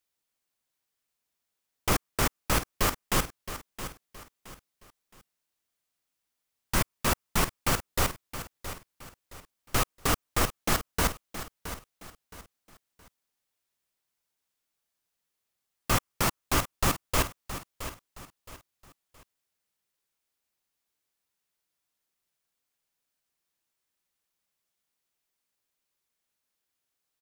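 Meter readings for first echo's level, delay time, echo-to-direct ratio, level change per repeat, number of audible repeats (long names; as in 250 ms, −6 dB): −12.0 dB, 669 ms, −11.5 dB, −9.5 dB, 3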